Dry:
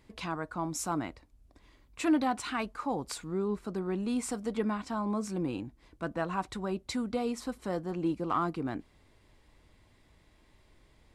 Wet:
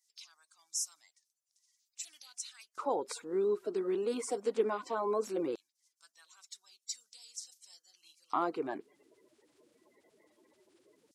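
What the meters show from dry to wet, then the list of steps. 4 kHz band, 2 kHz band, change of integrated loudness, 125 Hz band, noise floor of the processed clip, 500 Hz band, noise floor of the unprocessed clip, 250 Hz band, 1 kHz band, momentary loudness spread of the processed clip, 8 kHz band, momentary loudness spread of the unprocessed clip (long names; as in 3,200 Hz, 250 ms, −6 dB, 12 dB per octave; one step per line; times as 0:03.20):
−3.0 dB, −9.5 dB, −2.5 dB, below −15 dB, −85 dBFS, +1.0 dB, −64 dBFS, −10.5 dB, −4.5 dB, 16 LU, +1.5 dB, 7 LU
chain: spectral magnitudes quantised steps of 30 dB
auto-filter high-pass square 0.18 Hz 410–5,800 Hz
level −2.5 dB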